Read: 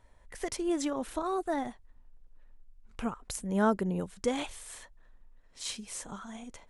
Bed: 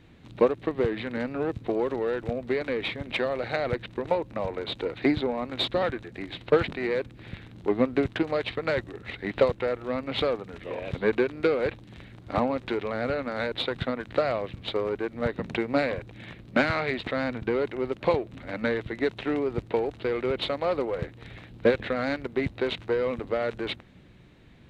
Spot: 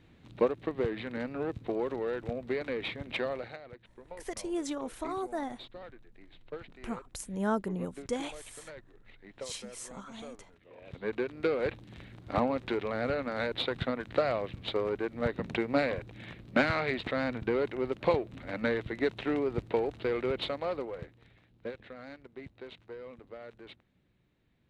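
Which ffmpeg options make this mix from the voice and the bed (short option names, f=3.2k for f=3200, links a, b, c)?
-filter_complex "[0:a]adelay=3850,volume=-3.5dB[a];[1:a]volume=12.5dB,afade=t=out:st=3.31:d=0.28:silence=0.16788,afade=t=in:st=10.71:d=1.08:silence=0.125893,afade=t=out:st=20.15:d=1.19:silence=0.16788[b];[a][b]amix=inputs=2:normalize=0"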